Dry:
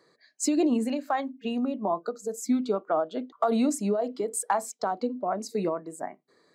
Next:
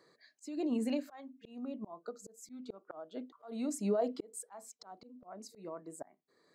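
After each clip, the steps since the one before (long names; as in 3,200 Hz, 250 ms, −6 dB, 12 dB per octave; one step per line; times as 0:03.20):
volume swells 625 ms
level −3 dB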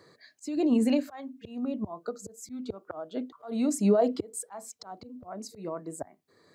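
parametric band 90 Hz +14 dB 1.1 octaves
level +8 dB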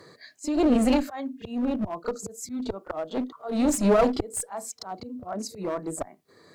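asymmetric clip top −33.5 dBFS
echo ahead of the sound 33 ms −16 dB
level +7 dB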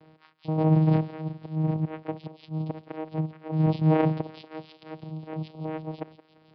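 feedback echo with a high-pass in the loop 171 ms, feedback 83%, high-pass 1,200 Hz, level −12 dB
channel vocoder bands 4, saw 157 Hz
downsampling to 11,025 Hz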